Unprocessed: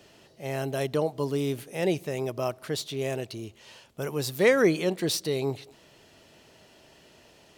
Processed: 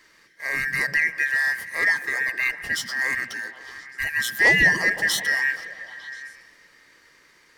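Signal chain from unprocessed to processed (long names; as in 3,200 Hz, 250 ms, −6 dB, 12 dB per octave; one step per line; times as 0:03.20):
band-splitting scrambler in four parts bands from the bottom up 2143
leveller curve on the samples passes 1
on a send: echo through a band-pass that steps 129 ms, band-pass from 170 Hz, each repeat 0.7 octaves, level −2 dB
on the sum: spring reverb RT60 3.2 s, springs 39/55 ms, chirp 75 ms, DRR 17 dB
level +1 dB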